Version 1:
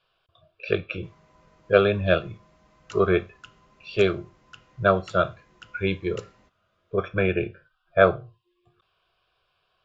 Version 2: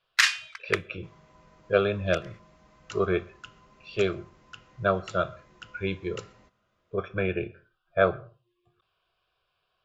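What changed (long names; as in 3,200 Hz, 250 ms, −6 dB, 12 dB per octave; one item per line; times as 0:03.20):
speech −6.0 dB
first sound: unmuted
reverb: on, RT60 0.30 s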